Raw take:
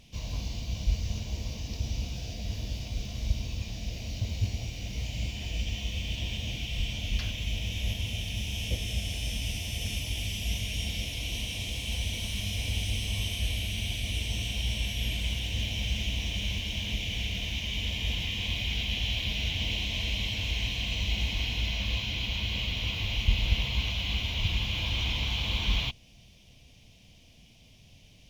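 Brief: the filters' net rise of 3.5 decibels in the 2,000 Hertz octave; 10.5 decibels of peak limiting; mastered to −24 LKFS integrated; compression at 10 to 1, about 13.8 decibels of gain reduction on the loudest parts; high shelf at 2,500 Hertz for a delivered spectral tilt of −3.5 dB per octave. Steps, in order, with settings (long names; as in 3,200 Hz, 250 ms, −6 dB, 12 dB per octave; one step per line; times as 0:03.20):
parametric band 2,000 Hz +7 dB
high-shelf EQ 2,500 Hz −3.5 dB
downward compressor 10 to 1, threshold −32 dBFS
level +17 dB
brickwall limiter −16 dBFS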